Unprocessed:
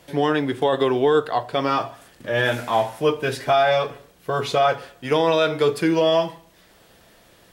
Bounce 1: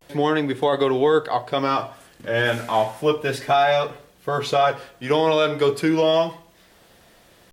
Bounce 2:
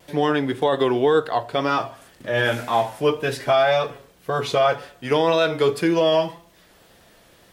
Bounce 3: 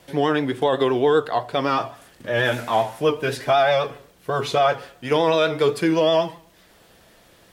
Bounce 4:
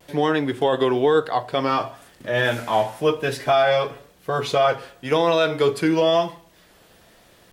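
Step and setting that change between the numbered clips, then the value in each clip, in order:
vibrato, rate: 0.32, 1.9, 7.9, 1 Hz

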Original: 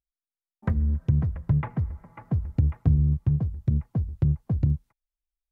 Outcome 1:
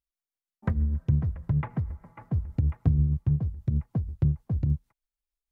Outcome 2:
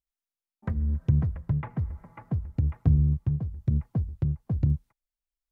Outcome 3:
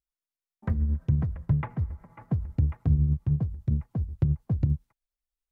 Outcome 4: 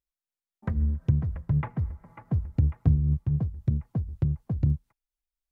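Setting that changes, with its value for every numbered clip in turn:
tremolo, rate: 6.4, 1.1, 10, 3.9 Hz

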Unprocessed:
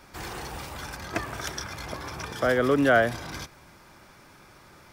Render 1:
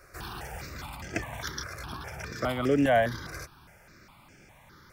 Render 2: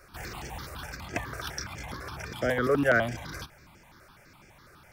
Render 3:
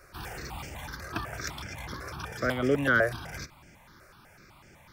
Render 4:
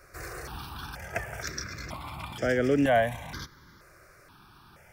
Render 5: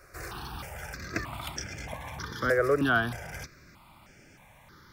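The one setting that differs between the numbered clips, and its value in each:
step phaser, rate: 4.9, 12, 8, 2.1, 3.2 Hz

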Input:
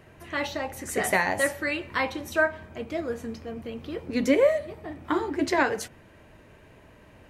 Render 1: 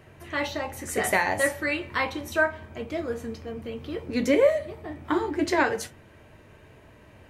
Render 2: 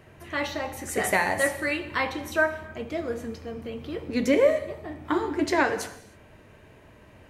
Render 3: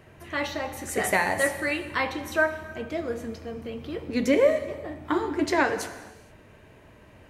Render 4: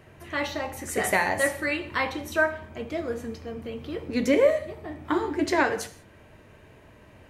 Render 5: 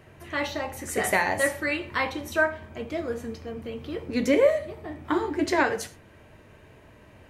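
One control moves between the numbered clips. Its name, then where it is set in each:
non-linear reverb, gate: 80, 340, 500, 210, 140 ms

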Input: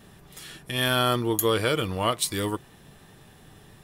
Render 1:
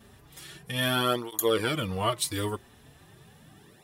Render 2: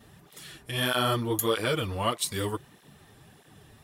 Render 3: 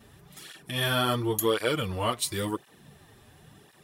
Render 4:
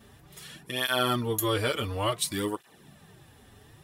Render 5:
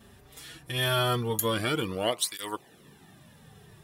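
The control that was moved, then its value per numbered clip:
tape flanging out of phase, nulls at: 0.38, 1.6, 0.94, 0.57, 0.21 Hz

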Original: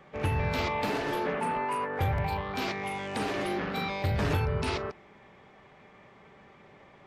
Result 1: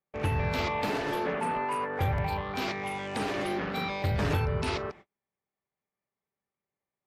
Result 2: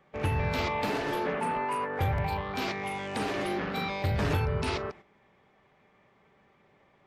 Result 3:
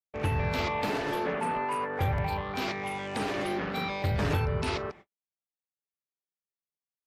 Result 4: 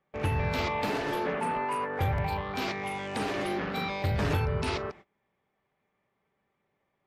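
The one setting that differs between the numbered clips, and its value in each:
gate, range: -38, -9, -57, -23 dB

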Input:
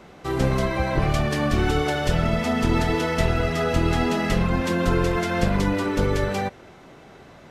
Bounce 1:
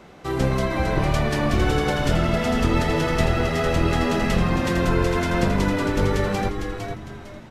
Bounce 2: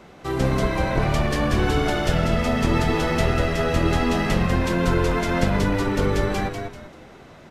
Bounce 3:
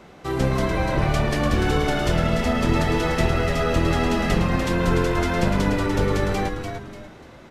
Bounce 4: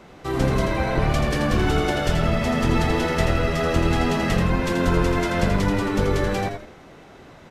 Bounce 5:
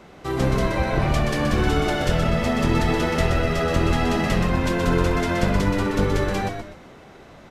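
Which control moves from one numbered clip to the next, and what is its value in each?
frequency-shifting echo, time: 455, 195, 294, 83, 125 ms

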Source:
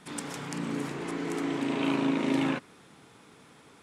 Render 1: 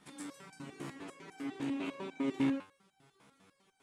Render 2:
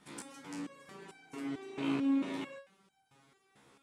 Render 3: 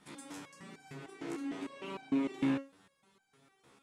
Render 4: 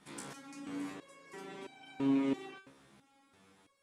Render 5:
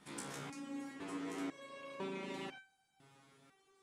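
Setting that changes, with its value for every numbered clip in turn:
stepped resonator, rate: 10, 4.5, 6.6, 3, 2 Hz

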